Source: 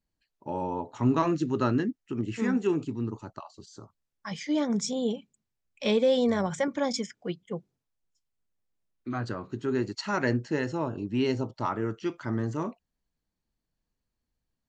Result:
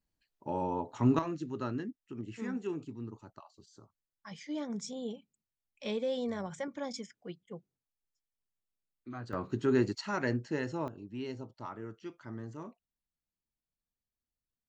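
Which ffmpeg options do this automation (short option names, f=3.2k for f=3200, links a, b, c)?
-af "asetnsamples=n=441:p=0,asendcmd='1.19 volume volume -10.5dB;9.33 volume volume 1dB;9.98 volume volume -5.5dB;10.88 volume volume -13dB',volume=-2dB"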